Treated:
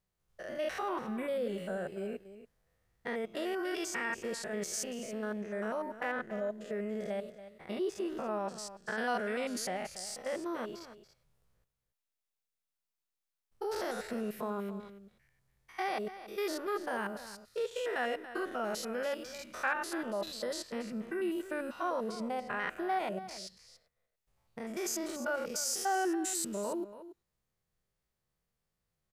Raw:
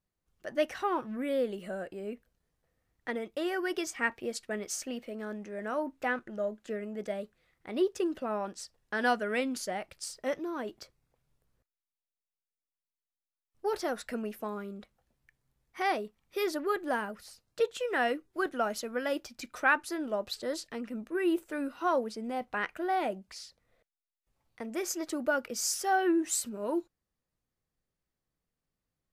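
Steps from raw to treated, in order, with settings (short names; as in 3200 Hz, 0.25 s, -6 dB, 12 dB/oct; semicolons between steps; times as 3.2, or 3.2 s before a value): stepped spectrum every 0.1 s; bell 280 Hz -12 dB 0.28 oct; in parallel at -2.5 dB: negative-ratio compressor -39 dBFS, ratio -1; on the sum: echo 0.282 s -13.5 dB; gain -3 dB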